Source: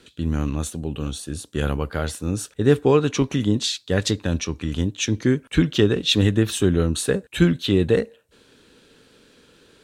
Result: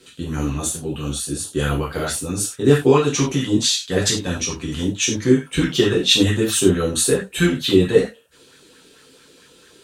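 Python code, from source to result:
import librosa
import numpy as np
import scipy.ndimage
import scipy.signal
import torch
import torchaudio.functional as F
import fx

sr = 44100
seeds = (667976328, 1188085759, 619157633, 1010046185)

y = fx.peak_eq(x, sr, hz=11000.0, db=11.5, octaves=2.6)
y = fx.rev_gated(y, sr, seeds[0], gate_ms=120, shape='falling', drr_db=-4.5)
y = fx.bell_lfo(y, sr, hz=4.5, low_hz=310.0, high_hz=1800.0, db=9)
y = y * 10.0 ** (-7.0 / 20.0)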